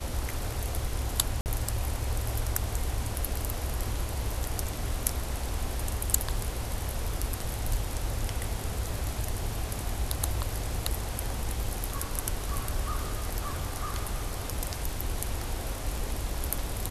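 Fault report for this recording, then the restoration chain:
1.41–1.46 s: dropout 49 ms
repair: interpolate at 1.41 s, 49 ms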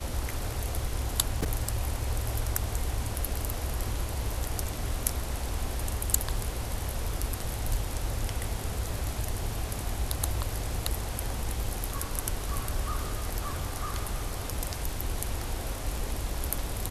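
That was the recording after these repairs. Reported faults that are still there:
nothing left

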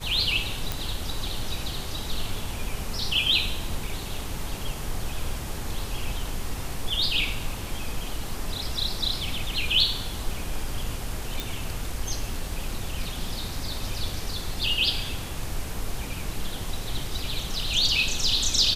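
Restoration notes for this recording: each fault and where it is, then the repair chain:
0.72 s: pop
11.40 s: pop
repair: de-click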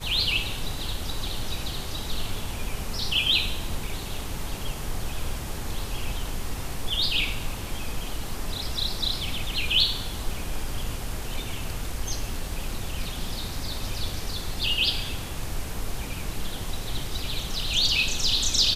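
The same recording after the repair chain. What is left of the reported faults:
nothing left

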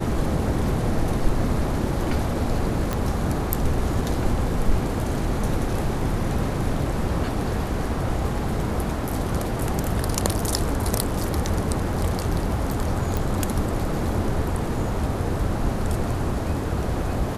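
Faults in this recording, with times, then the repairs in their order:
2.93 s: pop -11 dBFS
13.17 s: pop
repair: de-click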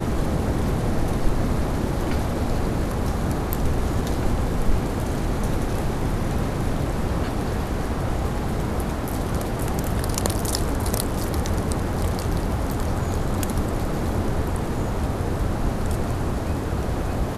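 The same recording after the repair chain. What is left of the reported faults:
nothing left

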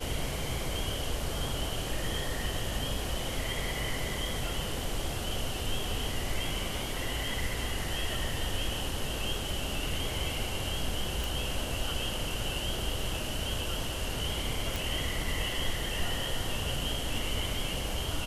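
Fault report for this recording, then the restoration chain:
11.24 s: pop
14.76 s: pop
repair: de-click

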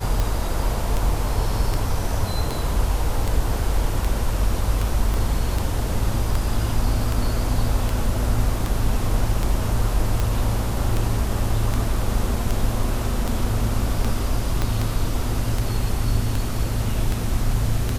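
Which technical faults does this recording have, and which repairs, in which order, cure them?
tick 78 rpm
5.14 s: pop
14.62 s: pop -9 dBFS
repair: de-click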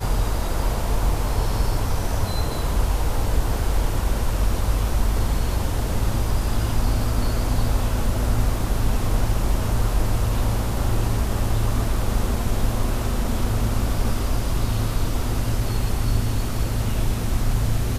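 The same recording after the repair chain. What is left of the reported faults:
5.14 s: pop
14.62 s: pop

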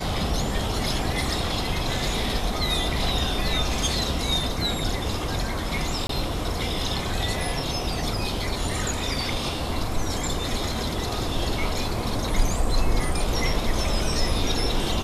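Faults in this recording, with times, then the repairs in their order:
6.07–6.09 s: dropout 23 ms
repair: interpolate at 6.07 s, 23 ms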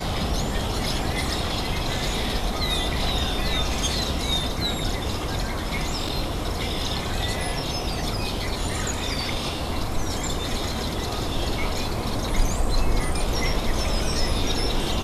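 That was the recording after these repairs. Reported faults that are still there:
nothing left

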